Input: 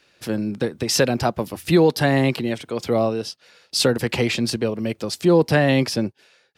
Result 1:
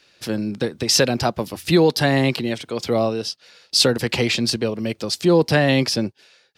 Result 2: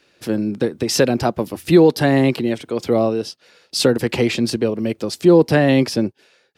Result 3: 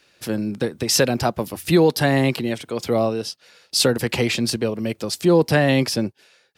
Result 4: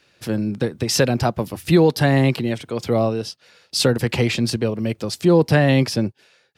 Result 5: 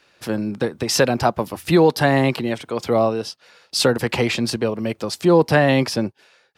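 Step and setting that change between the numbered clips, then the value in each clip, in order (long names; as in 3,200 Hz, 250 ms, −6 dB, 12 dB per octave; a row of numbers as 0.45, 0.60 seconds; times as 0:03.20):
parametric band, centre frequency: 4,600, 330, 16,000, 110, 990 Hertz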